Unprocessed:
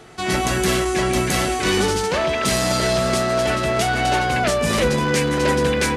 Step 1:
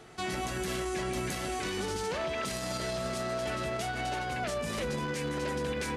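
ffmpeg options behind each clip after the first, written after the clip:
ffmpeg -i in.wav -af "alimiter=limit=-17dB:level=0:latency=1:release=100,volume=-8dB" out.wav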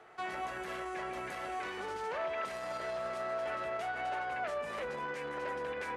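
ffmpeg -i in.wav -filter_complex "[0:a]acrossover=split=470 2300:gain=0.126 1 0.141[link_01][link_02][link_03];[link_01][link_02][link_03]amix=inputs=3:normalize=0" out.wav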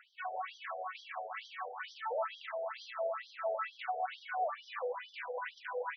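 ffmpeg -i in.wav -af "afftfilt=real='re*between(b*sr/1024,570*pow(4400/570,0.5+0.5*sin(2*PI*2.2*pts/sr))/1.41,570*pow(4400/570,0.5+0.5*sin(2*PI*2.2*pts/sr))*1.41)':imag='im*between(b*sr/1024,570*pow(4400/570,0.5+0.5*sin(2*PI*2.2*pts/sr))/1.41,570*pow(4400/570,0.5+0.5*sin(2*PI*2.2*pts/sr))*1.41)':win_size=1024:overlap=0.75,volume=5dB" out.wav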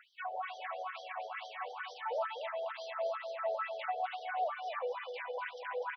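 ffmpeg -i in.wav -af "aecho=1:1:249:0.447" out.wav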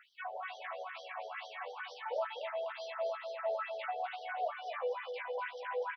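ffmpeg -i in.wav -filter_complex "[0:a]asplit=2[link_01][link_02];[link_02]adelay=14,volume=-5dB[link_03];[link_01][link_03]amix=inputs=2:normalize=0,volume=-1.5dB" out.wav

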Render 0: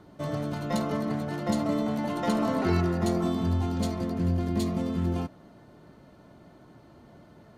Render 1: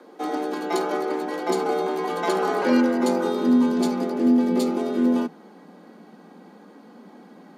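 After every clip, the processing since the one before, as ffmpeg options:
ffmpeg -i in.wav -af "asubboost=boost=5.5:cutoff=76,afreqshift=160,volume=4.5dB" out.wav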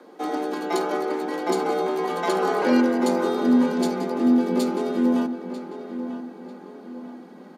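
ffmpeg -i in.wav -filter_complex "[0:a]asplit=2[link_01][link_02];[link_02]adelay=944,lowpass=frequency=3200:poles=1,volume=-10.5dB,asplit=2[link_03][link_04];[link_04]adelay=944,lowpass=frequency=3200:poles=1,volume=0.44,asplit=2[link_05][link_06];[link_06]adelay=944,lowpass=frequency=3200:poles=1,volume=0.44,asplit=2[link_07][link_08];[link_08]adelay=944,lowpass=frequency=3200:poles=1,volume=0.44,asplit=2[link_09][link_10];[link_10]adelay=944,lowpass=frequency=3200:poles=1,volume=0.44[link_11];[link_01][link_03][link_05][link_07][link_09][link_11]amix=inputs=6:normalize=0" out.wav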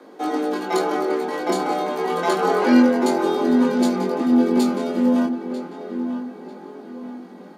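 ffmpeg -i in.wav -af "flanger=delay=18.5:depth=6.9:speed=0.3,volume=6dB" out.wav

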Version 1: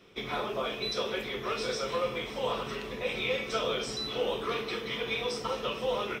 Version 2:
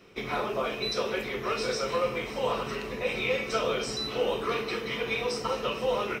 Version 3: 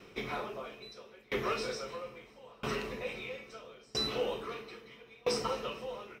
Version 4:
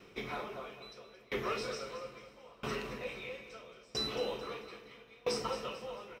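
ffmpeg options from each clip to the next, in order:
ffmpeg -i in.wav -af "bandreject=frequency=3400:width=6.7,volume=3dB" out.wav
ffmpeg -i in.wav -filter_complex "[0:a]asplit=2[link_01][link_02];[link_02]asoftclip=type=tanh:threshold=-32.5dB,volume=-11dB[link_03];[link_01][link_03]amix=inputs=2:normalize=0,aeval=exprs='val(0)*pow(10,-30*if(lt(mod(0.76*n/s,1),2*abs(0.76)/1000),1-mod(0.76*n/s,1)/(2*abs(0.76)/1000),(mod(0.76*n/s,1)-2*abs(0.76)/1000)/(1-2*abs(0.76)/1000))/20)':channel_layout=same" out.wav
ffmpeg -i in.wav -af "aecho=1:1:221|442|663|884:0.251|0.1|0.0402|0.0161,volume=-2.5dB" out.wav

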